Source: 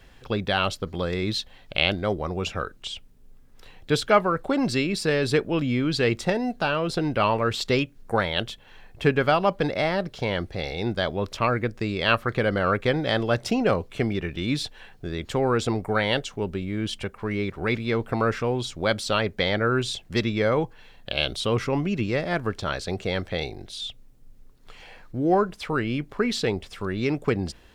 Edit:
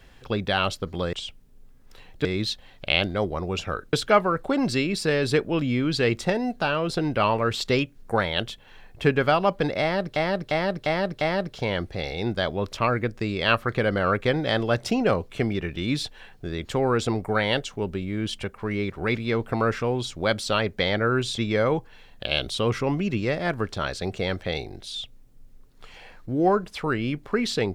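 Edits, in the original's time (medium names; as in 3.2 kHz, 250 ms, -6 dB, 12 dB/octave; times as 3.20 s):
2.81–3.93 s: move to 1.13 s
9.81–10.16 s: loop, 5 plays
19.98–20.24 s: delete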